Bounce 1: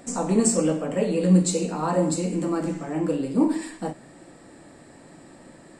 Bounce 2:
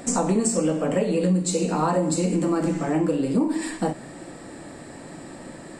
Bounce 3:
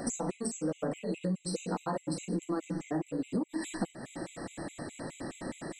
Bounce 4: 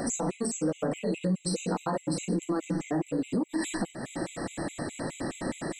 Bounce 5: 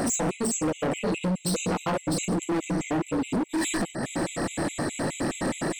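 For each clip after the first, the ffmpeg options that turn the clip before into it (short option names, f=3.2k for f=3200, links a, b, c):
-af "acompressor=threshold=-27dB:ratio=6,volume=8dB"
-af "acompressor=threshold=-31dB:ratio=5,afftfilt=real='re*gt(sin(2*PI*4.8*pts/sr)*(1-2*mod(floor(b*sr/1024/2000),2)),0)':imag='im*gt(sin(2*PI*4.8*pts/sr)*(1-2*mod(floor(b*sr/1024/2000),2)),0)':win_size=1024:overlap=0.75,volume=1.5dB"
-af "alimiter=level_in=2.5dB:limit=-24dB:level=0:latency=1:release=34,volume=-2.5dB,volume=6.5dB"
-af "asoftclip=type=hard:threshold=-30.5dB,volume=7.5dB"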